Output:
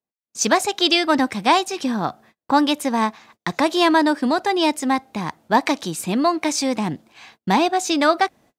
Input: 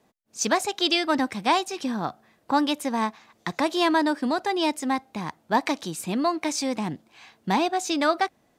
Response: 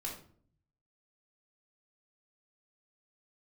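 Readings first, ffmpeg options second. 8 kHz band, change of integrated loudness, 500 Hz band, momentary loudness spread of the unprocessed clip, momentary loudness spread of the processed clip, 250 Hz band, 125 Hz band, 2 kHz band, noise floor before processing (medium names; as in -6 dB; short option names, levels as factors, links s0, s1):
+5.5 dB, +5.5 dB, +5.5 dB, 11 LU, 11 LU, +5.5 dB, +5.5 dB, +5.5 dB, -65 dBFS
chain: -af "agate=range=0.02:threshold=0.00224:ratio=16:detection=peak,volume=1.88"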